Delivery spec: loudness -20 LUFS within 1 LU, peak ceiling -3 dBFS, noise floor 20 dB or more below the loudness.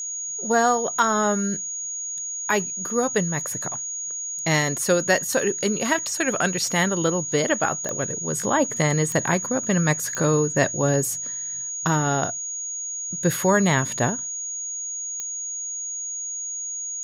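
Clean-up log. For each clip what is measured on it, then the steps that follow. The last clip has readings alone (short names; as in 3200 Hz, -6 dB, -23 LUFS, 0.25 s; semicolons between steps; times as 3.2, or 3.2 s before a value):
clicks 4; steady tone 6700 Hz; tone level -28 dBFS; loudness -23.0 LUFS; peak -7.5 dBFS; loudness target -20.0 LUFS
-> de-click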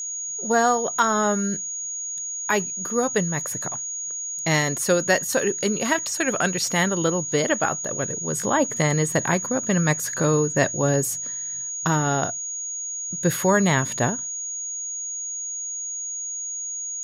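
clicks 0; steady tone 6700 Hz; tone level -28 dBFS
-> notch 6700 Hz, Q 30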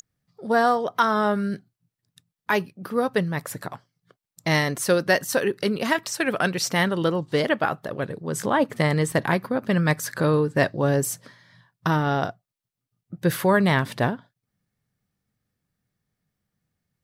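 steady tone none; loudness -23.5 LUFS; peak -8.0 dBFS; loudness target -20.0 LUFS
-> gain +3.5 dB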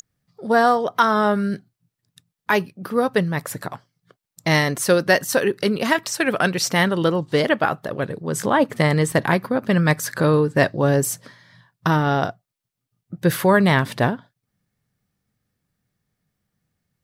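loudness -20.0 LUFS; peak -4.5 dBFS; noise floor -83 dBFS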